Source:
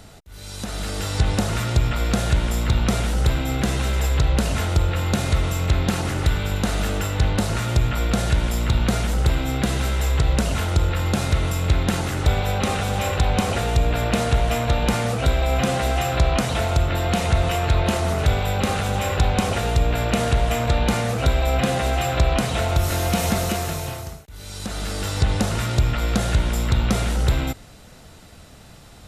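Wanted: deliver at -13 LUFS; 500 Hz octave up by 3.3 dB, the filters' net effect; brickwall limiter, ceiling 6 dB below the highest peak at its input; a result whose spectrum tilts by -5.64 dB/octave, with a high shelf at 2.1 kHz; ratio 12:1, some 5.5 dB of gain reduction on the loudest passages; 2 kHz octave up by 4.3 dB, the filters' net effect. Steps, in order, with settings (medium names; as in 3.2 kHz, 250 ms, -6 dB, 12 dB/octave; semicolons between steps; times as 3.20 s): peaking EQ 500 Hz +4 dB; peaking EQ 2 kHz +8.5 dB; treble shelf 2.1 kHz -5.5 dB; compression 12:1, threshold -18 dBFS; trim +12 dB; peak limiter -3 dBFS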